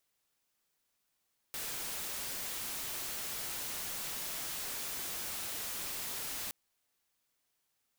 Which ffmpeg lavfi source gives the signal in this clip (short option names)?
-f lavfi -i "anoisesrc=c=white:a=0.0183:d=4.97:r=44100:seed=1"